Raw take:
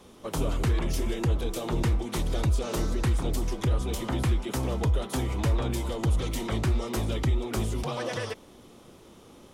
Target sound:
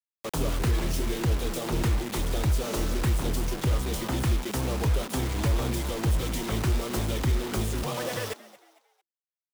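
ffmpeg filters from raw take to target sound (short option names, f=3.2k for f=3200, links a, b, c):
-filter_complex "[0:a]acrusher=bits=5:mix=0:aa=0.000001,asplit=4[a][b][c][d];[b]adelay=226,afreqshift=110,volume=-19dB[e];[c]adelay=452,afreqshift=220,volume=-27.9dB[f];[d]adelay=678,afreqshift=330,volume=-36.7dB[g];[a][e][f][g]amix=inputs=4:normalize=0"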